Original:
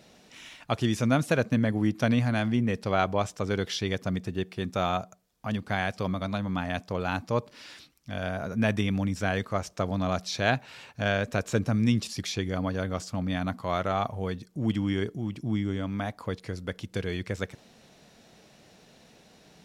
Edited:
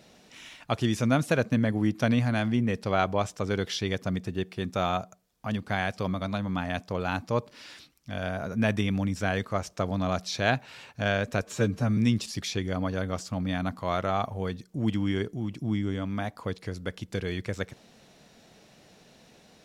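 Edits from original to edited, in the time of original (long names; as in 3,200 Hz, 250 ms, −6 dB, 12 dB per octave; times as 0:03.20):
0:11.42–0:11.79: time-stretch 1.5×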